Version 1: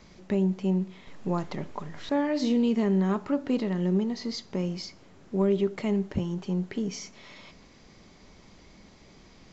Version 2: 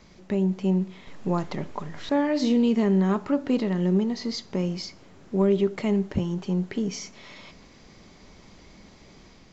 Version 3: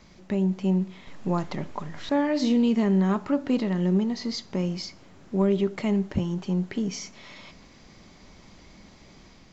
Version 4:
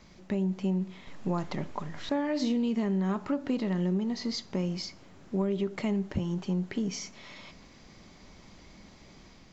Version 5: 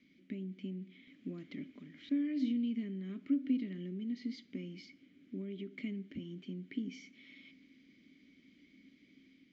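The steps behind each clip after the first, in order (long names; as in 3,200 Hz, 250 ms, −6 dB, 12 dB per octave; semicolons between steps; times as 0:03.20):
automatic gain control gain up to 3 dB
parametric band 430 Hz −3.5 dB 0.44 octaves
downward compressor, threshold −23 dBFS, peak gain reduction 5.5 dB; level −2 dB
formant filter i; level +1.5 dB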